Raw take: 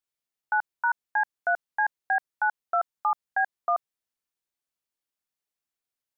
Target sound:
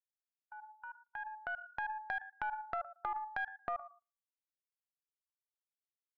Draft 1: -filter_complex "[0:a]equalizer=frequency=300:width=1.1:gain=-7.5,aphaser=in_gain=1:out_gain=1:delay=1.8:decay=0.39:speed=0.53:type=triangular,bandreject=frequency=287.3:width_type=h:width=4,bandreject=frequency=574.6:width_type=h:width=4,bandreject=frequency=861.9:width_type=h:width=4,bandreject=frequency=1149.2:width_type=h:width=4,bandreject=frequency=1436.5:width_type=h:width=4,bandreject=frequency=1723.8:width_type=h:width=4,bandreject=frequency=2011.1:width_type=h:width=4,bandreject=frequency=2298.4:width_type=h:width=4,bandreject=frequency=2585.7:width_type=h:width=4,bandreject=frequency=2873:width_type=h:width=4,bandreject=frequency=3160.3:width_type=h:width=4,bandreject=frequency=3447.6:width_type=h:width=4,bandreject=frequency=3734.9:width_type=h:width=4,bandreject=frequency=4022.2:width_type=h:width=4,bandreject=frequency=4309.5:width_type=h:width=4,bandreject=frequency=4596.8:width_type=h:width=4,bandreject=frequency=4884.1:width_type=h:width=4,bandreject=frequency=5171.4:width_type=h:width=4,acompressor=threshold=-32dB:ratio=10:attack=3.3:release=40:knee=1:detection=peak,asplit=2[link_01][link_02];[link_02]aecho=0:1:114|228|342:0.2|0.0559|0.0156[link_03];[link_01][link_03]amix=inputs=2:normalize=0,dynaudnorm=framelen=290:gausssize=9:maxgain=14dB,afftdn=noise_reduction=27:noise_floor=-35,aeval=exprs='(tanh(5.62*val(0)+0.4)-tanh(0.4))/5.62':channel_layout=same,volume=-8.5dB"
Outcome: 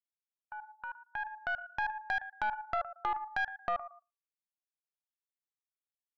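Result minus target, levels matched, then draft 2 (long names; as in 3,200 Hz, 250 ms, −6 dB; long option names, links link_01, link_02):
downward compressor: peak gain reduction −6.5 dB
-filter_complex "[0:a]equalizer=frequency=300:width=1.1:gain=-7.5,aphaser=in_gain=1:out_gain=1:delay=1.8:decay=0.39:speed=0.53:type=triangular,bandreject=frequency=287.3:width_type=h:width=4,bandreject=frequency=574.6:width_type=h:width=4,bandreject=frequency=861.9:width_type=h:width=4,bandreject=frequency=1149.2:width_type=h:width=4,bandreject=frequency=1436.5:width_type=h:width=4,bandreject=frequency=1723.8:width_type=h:width=4,bandreject=frequency=2011.1:width_type=h:width=4,bandreject=frequency=2298.4:width_type=h:width=4,bandreject=frequency=2585.7:width_type=h:width=4,bandreject=frequency=2873:width_type=h:width=4,bandreject=frequency=3160.3:width_type=h:width=4,bandreject=frequency=3447.6:width_type=h:width=4,bandreject=frequency=3734.9:width_type=h:width=4,bandreject=frequency=4022.2:width_type=h:width=4,bandreject=frequency=4309.5:width_type=h:width=4,bandreject=frequency=4596.8:width_type=h:width=4,bandreject=frequency=4884.1:width_type=h:width=4,bandreject=frequency=5171.4:width_type=h:width=4,acompressor=threshold=-39dB:ratio=10:attack=3.3:release=40:knee=1:detection=peak,asplit=2[link_01][link_02];[link_02]aecho=0:1:114|228|342:0.2|0.0559|0.0156[link_03];[link_01][link_03]amix=inputs=2:normalize=0,dynaudnorm=framelen=290:gausssize=9:maxgain=14dB,afftdn=noise_reduction=27:noise_floor=-35,aeval=exprs='(tanh(5.62*val(0)+0.4)-tanh(0.4))/5.62':channel_layout=same,volume=-8.5dB"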